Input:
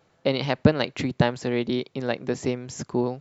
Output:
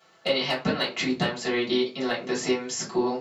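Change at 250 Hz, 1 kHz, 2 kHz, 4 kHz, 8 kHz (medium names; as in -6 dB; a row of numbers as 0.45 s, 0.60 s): -2.5 dB, 0.0 dB, +2.5 dB, +5.5 dB, no reading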